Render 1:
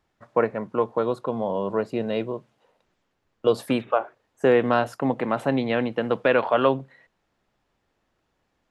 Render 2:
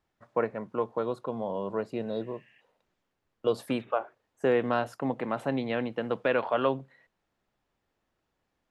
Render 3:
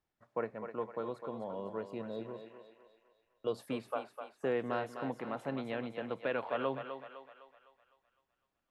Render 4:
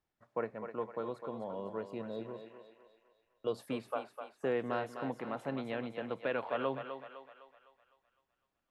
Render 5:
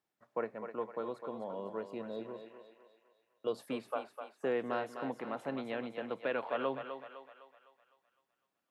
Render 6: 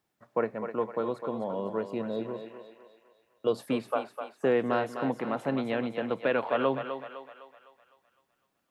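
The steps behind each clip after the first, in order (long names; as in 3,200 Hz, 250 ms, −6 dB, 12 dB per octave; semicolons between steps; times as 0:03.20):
healed spectral selection 0:02.08–0:02.58, 1,600–3,300 Hz before; level −6.5 dB
feedback echo with a high-pass in the loop 254 ms, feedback 51%, high-pass 410 Hz, level −7 dB; level −8.5 dB
no processing that can be heard
high-pass filter 170 Hz 12 dB per octave
low-shelf EQ 170 Hz +9 dB; level +7 dB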